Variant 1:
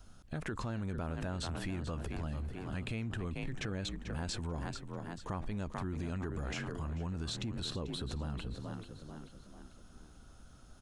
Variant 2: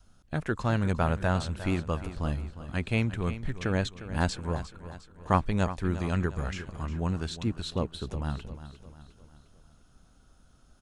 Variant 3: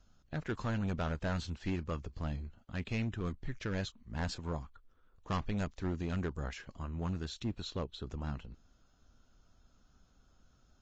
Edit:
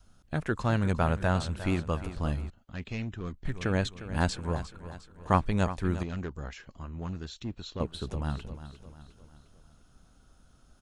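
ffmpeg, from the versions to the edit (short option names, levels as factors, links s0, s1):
-filter_complex "[2:a]asplit=2[s0][s1];[1:a]asplit=3[s2][s3][s4];[s2]atrim=end=2.502[s5];[s0]atrim=start=2.498:end=3.452[s6];[s3]atrim=start=3.448:end=6.032[s7];[s1]atrim=start=6.028:end=7.802[s8];[s4]atrim=start=7.798[s9];[s5][s6]acrossfade=d=0.004:c1=hsin:c2=hsin[s10];[s10][s7]acrossfade=d=0.004:c1=hsin:c2=hsin[s11];[s11][s8]acrossfade=d=0.004:c1=hsin:c2=hsin[s12];[s12][s9]acrossfade=d=0.004:c1=hsin:c2=hsin"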